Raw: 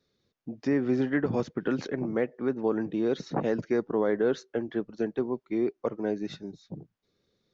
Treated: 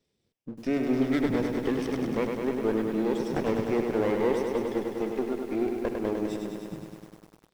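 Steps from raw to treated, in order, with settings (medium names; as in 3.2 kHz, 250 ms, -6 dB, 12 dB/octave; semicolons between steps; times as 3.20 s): comb filter that takes the minimum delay 0.36 ms; bit-crushed delay 101 ms, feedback 80%, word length 9-bit, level -5 dB; trim -1 dB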